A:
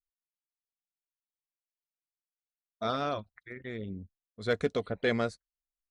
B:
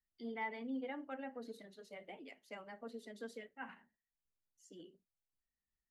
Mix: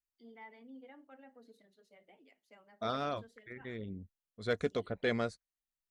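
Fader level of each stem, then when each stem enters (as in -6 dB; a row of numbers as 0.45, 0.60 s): -4.0, -11.0 dB; 0.00, 0.00 s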